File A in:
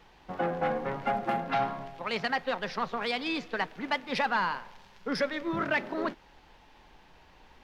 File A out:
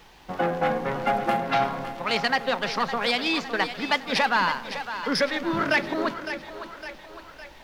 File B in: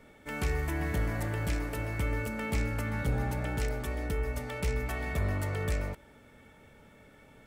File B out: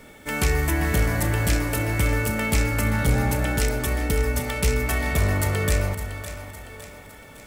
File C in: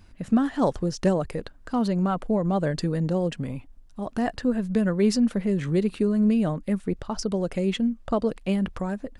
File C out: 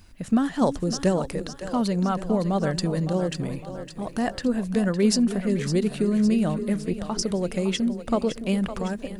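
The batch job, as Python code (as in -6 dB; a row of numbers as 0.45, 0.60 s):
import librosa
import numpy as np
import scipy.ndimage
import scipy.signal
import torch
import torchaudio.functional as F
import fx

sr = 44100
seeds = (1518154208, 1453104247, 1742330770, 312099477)

y = fx.high_shelf(x, sr, hz=4000.0, db=9.0)
y = fx.quant_dither(y, sr, seeds[0], bits=12, dither='none')
y = fx.echo_split(y, sr, split_hz=410.0, low_ms=288, high_ms=559, feedback_pct=52, wet_db=-10.5)
y = y * 10.0 ** (-9 / 20.0) / np.max(np.abs(y))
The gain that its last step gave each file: +5.0, +8.5, 0.0 dB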